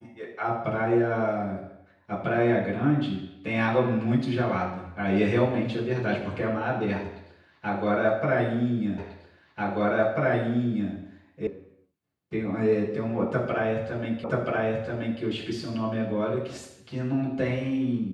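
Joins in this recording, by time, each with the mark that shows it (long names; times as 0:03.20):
0:08.98: the same again, the last 1.94 s
0:11.47: cut off before it has died away
0:14.24: the same again, the last 0.98 s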